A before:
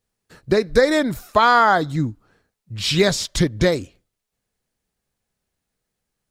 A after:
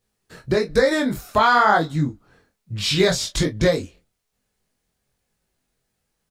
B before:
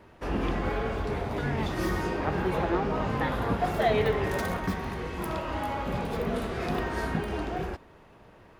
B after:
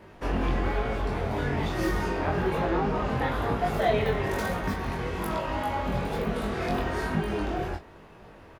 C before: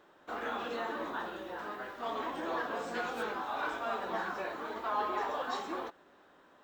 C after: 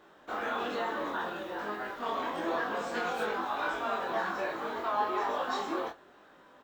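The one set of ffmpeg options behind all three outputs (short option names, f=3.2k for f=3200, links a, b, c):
-filter_complex "[0:a]asplit=2[a][b];[b]acompressor=threshold=-33dB:ratio=6,volume=1dB[c];[a][c]amix=inputs=2:normalize=0,flanger=delay=18.5:depth=4.3:speed=1.1,aecho=1:1:24|39:0.376|0.141"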